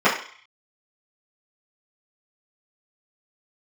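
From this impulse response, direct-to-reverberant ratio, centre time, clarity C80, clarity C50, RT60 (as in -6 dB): -12.5 dB, 30 ms, 10.5 dB, 7.0 dB, 0.50 s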